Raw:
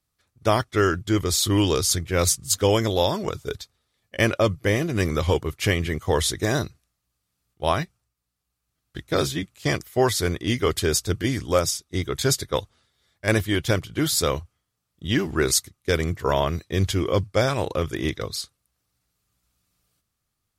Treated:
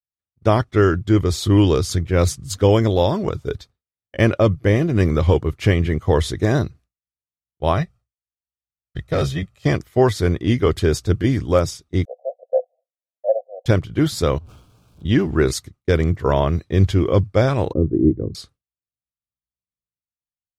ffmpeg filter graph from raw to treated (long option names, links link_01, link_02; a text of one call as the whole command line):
ffmpeg -i in.wav -filter_complex "[0:a]asettb=1/sr,asplit=3[link_01][link_02][link_03];[link_01]atrim=end=7.774[link_04];[link_02]atrim=start=7.77:end=9.66,asetpts=PTS-STARTPTS,afade=type=in:duration=0.004:curve=qsin,afade=type=out:start_time=1.886:duration=0.004:curve=qsin,equalizer=frequency=260:width_type=o:width=0.58:gain=-5.5,aecho=1:1:1.6:0.46,atrim=end_sample=83349,asoftclip=type=hard:threshold=-18.5dB[link_05];[link_03]atrim=start=9.656[link_06];[link_04][link_05]acrossfade=duration=0.004:curve1=hsin:curve2=qsin[link_07];[link_07][link_06]acrossfade=duration=0.004:curve1=qsin:curve2=hsin,asettb=1/sr,asplit=3[link_08][link_09][link_10];[link_08]atrim=end=12.054[link_11];[link_09]atrim=start=12.05:end=13.66,asetpts=PTS-STARTPTS,afade=type=in:duration=0.004:curve=qsin,afade=type=out:start_time=1.606:duration=0.004:curve=qsin,asuperpass=centerf=610:order=12:qfactor=2.4,acontrast=32[link_12];[link_10]atrim=start=13.656[link_13];[link_11][link_12]acrossfade=duration=0.004:curve1=hsin:curve2=qsin[link_14];[link_14][link_13]acrossfade=duration=0.004:curve1=qsin:curve2=hsin,asettb=1/sr,asplit=3[link_15][link_16][link_17];[link_15]atrim=end=14.384[link_18];[link_16]atrim=start=14.38:end=15.05,asetpts=PTS-STARTPTS,afade=type=in:duration=0.004:curve=qsin,afade=type=out:start_time=0.666:duration=0.004:curve=qsin,aeval=exprs='val(0)+0.5*0.0075*sgn(val(0))':channel_layout=same,asuperstop=centerf=1900:order=4:qfactor=2.6,acompressor=threshold=-41dB:ratio=10:attack=3.2:release=140:knee=1:detection=peak[link_19];[link_17]atrim=start=15.046[link_20];[link_18][link_19]acrossfade=duration=0.004:curve1=hsin:curve2=qsin[link_21];[link_21][link_20]acrossfade=duration=0.004:curve1=qsin:curve2=hsin,asettb=1/sr,asplit=3[link_22][link_23][link_24];[link_22]atrim=end=17.734[link_25];[link_23]atrim=start=17.73:end=18.35,asetpts=PTS-STARTPTS,afade=type=in:duration=0.004:curve=qsin,afade=type=out:start_time=0.616:duration=0.004:curve=qsin,lowpass=frequency=320:width_type=q:width=2.3,bandreject=frequency=60:width_type=h:width=6,bandreject=frequency=120:width_type=h:width=6,bandreject=frequency=180:width_type=h:width=6[link_26];[link_24]atrim=start=18.346[link_27];[link_25][link_26]acrossfade=duration=0.004:curve1=hsin:curve2=qsin[link_28];[link_28][link_27]acrossfade=duration=0.004:curve1=qsin:curve2=hsin,lowpass=frequency=2700:poles=1,agate=range=-33dB:threshold=-45dB:ratio=3:detection=peak,lowshelf=frequency=490:gain=7,volume=1dB" out.wav